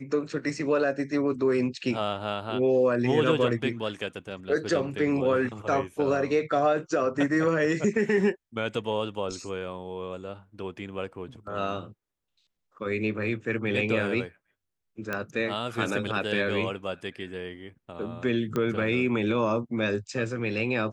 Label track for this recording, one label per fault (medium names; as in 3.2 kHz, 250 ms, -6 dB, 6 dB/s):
15.130000	15.130000	pop -16 dBFS
18.560000	18.560000	pop -16 dBFS